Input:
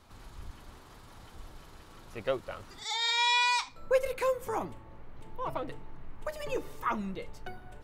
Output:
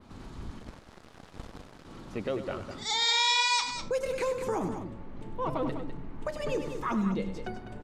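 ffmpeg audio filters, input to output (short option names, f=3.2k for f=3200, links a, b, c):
-filter_complex "[0:a]lowpass=8.2k,equalizer=f=230:t=o:w=1.8:g=11,asettb=1/sr,asplit=3[a][b][c];[a]atrim=end=0.594[d];[b]atrim=start=0.59:end=1.85,asetpts=PTS-STARTPTS,afade=t=in:d=0.004:c=qsin,afade=t=out:st=1.256:d=0.004:c=qsin,aeval=exprs='0.0282*(cos(1*acos(clip(val(0)/0.0282,-1,1)))-cos(1*PI/2))+0.00708*(cos(4*acos(clip(val(0)/0.0282,-1,1)))-cos(4*PI/2))+0.00501*(cos(6*acos(clip(val(0)/0.0282,-1,1)))-cos(6*PI/2))+0.00562*(cos(7*acos(clip(val(0)/0.0282,-1,1)))-cos(7*PI/2))':c=same[e];[c]atrim=start=1.846[f];[d][e]acrossfade=d=0.004:c1=hsin:c2=qsin[g];[g][f]acrossfade=d=0.004:c1=qsin:c2=hsin,acrossover=split=4200[h][i];[h]alimiter=limit=-24dB:level=0:latency=1:release=116[j];[j][i]amix=inputs=2:normalize=0,adynamicequalizer=threshold=0.00398:dfrequency=6400:dqfactor=0.87:tfrequency=6400:tqfactor=0.87:attack=5:release=100:ratio=0.375:range=3:mode=boostabove:tftype=bell,aecho=1:1:99.13|201.2:0.282|0.355,volume=1.5dB"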